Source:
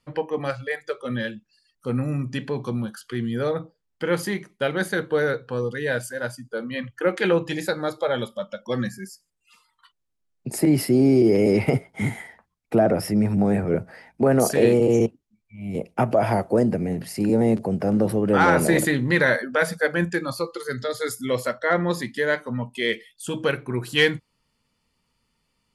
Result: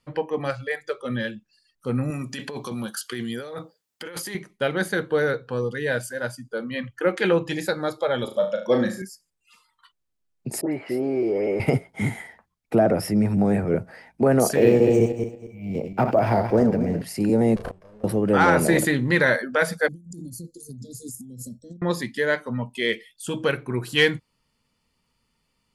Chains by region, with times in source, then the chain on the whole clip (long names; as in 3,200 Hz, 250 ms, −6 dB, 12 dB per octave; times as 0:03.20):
0:02.10–0:04.35: high-pass filter 350 Hz 6 dB per octave + high-shelf EQ 3,800 Hz +9.5 dB + compressor whose output falls as the input rises −32 dBFS
0:08.24–0:09.02: high-pass filter 120 Hz + parametric band 510 Hz +8 dB 1.6 octaves + flutter between parallel walls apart 6.3 metres, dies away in 0.38 s
0:10.61–0:11.60: three-way crossover with the lows and the highs turned down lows −16 dB, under 400 Hz, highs −19 dB, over 2,500 Hz + all-pass dispersion highs, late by 116 ms, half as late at 1,900 Hz
0:14.55–0:17.02: feedback delay that plays each chunk backwards 115 ms, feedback 47%, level −7 dB + parametric band 3,900 Hz −6.5 dB 0.42 octaves + linearly interpolated sample-rate reduction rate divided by 3×
0:17.56–0:18.04: lower of the sound and its delayed copy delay 1.8 ms + gate with flip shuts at −19 dBFS, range −25 dB + double-tracking delay 33 ms −4 dB
0:19.88–0:21.82: elliptic band-stop filter 240–7,000 Hz, stop band 60 dB + high-shelf EQ 11,000 Hz −6.5 dB + compressor whose output falls as the input rises −39 dBFS
whole clip: no processing